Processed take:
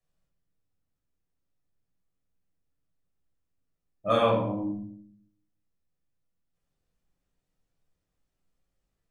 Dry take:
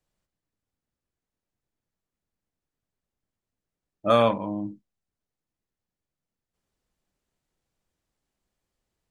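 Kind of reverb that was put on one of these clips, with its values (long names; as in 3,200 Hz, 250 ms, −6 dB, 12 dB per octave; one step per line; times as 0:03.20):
rectangular room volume 830 cubic metres, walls furnished, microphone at 6 metres
level −10 dB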